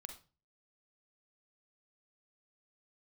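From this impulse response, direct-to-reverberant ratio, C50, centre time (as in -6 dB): 6.0 dB, 8.5 dB, 13 ms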